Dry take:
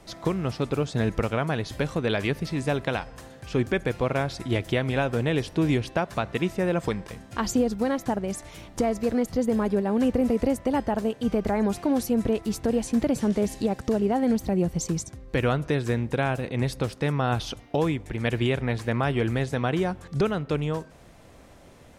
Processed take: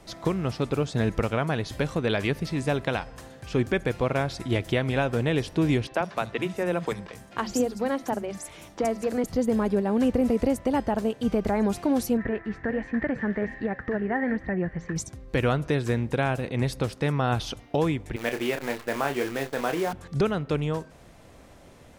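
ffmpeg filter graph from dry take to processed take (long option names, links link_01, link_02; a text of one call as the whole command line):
ffmpeg -i in.wav -filter_complex "[0:a]asettb=1/sr,asplit=3[link_01][link_02][link_03];[link_01]atrim=end=5.874[link_04];[link_02]atrim=start=5.87:end=9.24,asetpts=PTS-STARTPTS,afade=type=in:duration=0.004:curve=qsin,afade=type=out:start_time=3.366:duration=0.004:curve=qsin,lowshelf=frequency=94:gain=-12,acrossover=split=210|4900[link_05][link_06][link_07];[link_05]adelay=40[link_08];[link_07]adelay=70[link_09];[link_08][link_06][link_09]amix=inputs=3:normalize=0,atrim=end_sample=148617[link_10];[link_03]atrim=start=9.236[link_11];[link_04][link_10]acrossfade=duration=0.004:curve1=hsin:curve2=qsin[link_12];[link_12][link_11]acrossfade=duration=0.004:curve1=qsin:curve2=hsin,asettb=1/sr,asplit=3[link_13][link_14][link_15];[link_13]atrim=end=12.174[link_16];[link_14]atrim=start=12.17:end=14.96,asetpts=PTS-STARTPTS,afade=type=in:duration=0.004:curve=qsin,afade=type=out:start_time=2.786:duration=0.004:curve=qsin,lowpass=frequency=1800:width_type=q:width=13,flanger=delay=4.3:depth=4.5:regen=-85:speed=1.3:shape=sinusoidal[link_17];[link_15]atrim=start=14.956[link_18];[link_16][link_17]acrossfade=duration=0.004:curve1=hsin:curve2=qsin[link_19];[link_19][link_18]acrossfade=duration=0.004:curve1=qsin:curve2=hsin,asettb=1/sr,asplit=3[link_20][link_21][link_22];[link_20]atrim=end=18.164[link_23];[link_21]atrim=start=18.16:end=19.93,asetpts=PTS-STARTPTS,afade=type=in:duration=0.004:curve=qsin,afade=type=out:start_time=1.766:duration=0.004:curve=qsin,highpass=310,lowpass=2800,acrusher=bits=7:dc=4:mix=0:aa=0.000001,asplit=2[link_24][link_25];[link_25]adelay=29,volume=-7.5dB[link_26];[link_24][link_26]amix=inputs=2:normalize=0,atrim=end_sample=78057[link_27];[link_22]atrim=start=19.926[link_28];[link_23][link_27]acrossfade=duration=0.004:curve1=hsin:curve2=qsin[link_29];[link_29][link_28]acrossfade=duration=0.004:curve1=qsin:curve2=hsin" out.wav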